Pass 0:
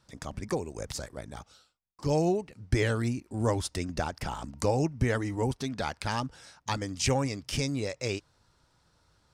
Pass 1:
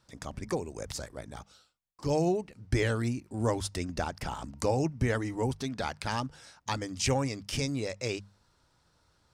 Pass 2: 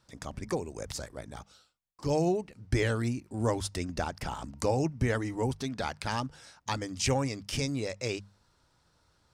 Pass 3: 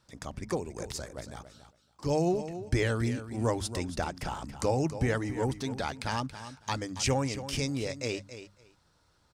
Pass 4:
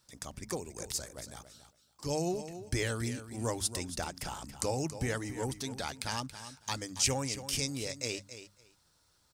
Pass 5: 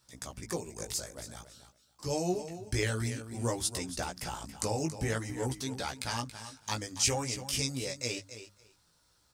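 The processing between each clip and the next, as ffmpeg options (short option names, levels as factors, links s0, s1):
-af "bandreject=f=50:t=h:w=6,bandreject=f=100:t=h:w=6,bandreject=f=150:t=h:w=6,bandreject=f=200:t=h:w=6,volume=0.891"
-af anull
-af "aecho=1:1:278|556:0.251|0.0402"
-af "crystalizer=i=3:c=0,volume=0.501"
-af "flanger=delay=15.5:depth=3.2:speed=0.52,volume=1.58"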